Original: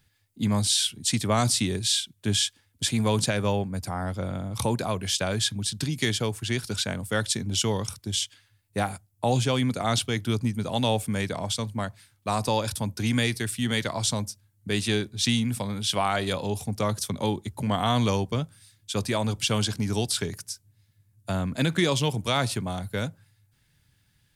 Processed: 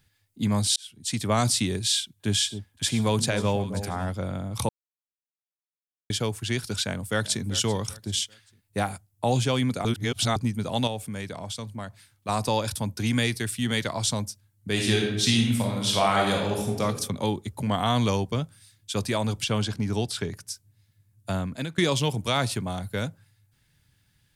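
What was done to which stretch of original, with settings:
0.76–1.32 s: fade in
1.93–4.10 s: echo whose repeats swap between lows and highs 268 ms, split 850 Hz, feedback 53%, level -10 dB
4.69–6.10 s: mute
6.84–7.43 s: echo throw 390 ms, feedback 35%, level -16 dB
9.85–10.36 s: reverse
10.87–12.29 s: compression 1.5:1, threshold -41 dBFS
14.71–16.81 s: reverb throw, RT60 0.95 s, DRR -0.5 dB
19.44–20.47 s: treble shelf 4.5 kHz -9.5 dB
21.34–21.78 s: fade out linear, to -16.5 dB

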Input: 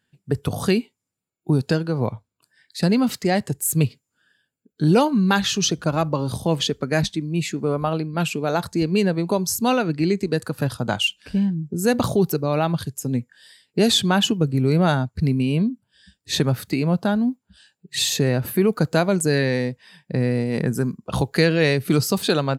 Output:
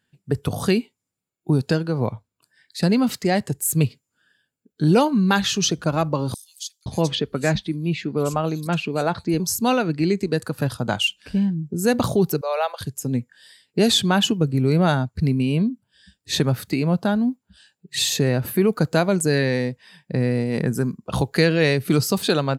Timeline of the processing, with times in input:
6.34–9.40 s: bands offset in time highs, lows 520 ms, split 4.7 kHz
12.41–12.81 s: steep high-pass 460 Hz 72 dB/octave

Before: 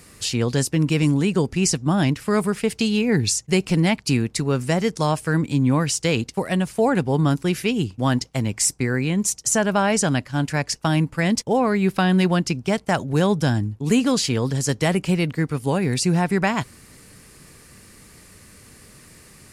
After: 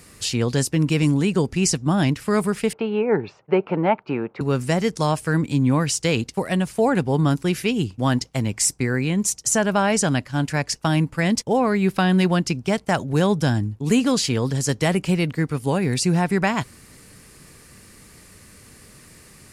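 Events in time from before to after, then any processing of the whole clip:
2.73–4.41 s: cabinet simulation 240–2200 Hz, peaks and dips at 250 Hz -5 dB, 410 Hz +5 dB, 590 Hz +7 dB, 880 Hz +9 dB, 1.3 kHz +7 dB, 1.9 kHz -7 dB

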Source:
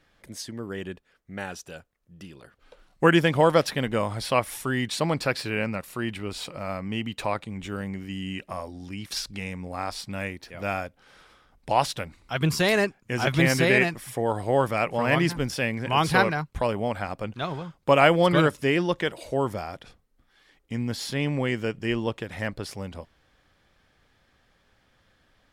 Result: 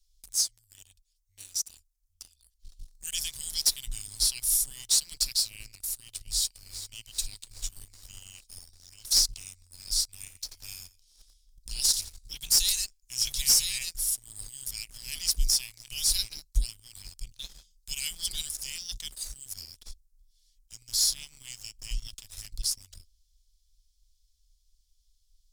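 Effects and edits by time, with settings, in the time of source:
6.15–6.95 s: echo throw 400 ms, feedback 65%, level -11.5 dB
10.19–12.17 s: feedback delay 87 ms, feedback 26%, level -10 dB
whole clip: inverse Chebyshev band-stop 210–1100 Hz, stop band 80 dB; waveshaping leveller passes 2; bass shelf 320 Hz +3.5 dB; trim +7 dB

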